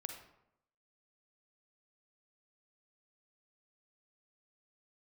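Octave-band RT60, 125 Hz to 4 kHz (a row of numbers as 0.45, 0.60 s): 0.85, 0.85, 0.80, 0.80, 0.65, 0.50 s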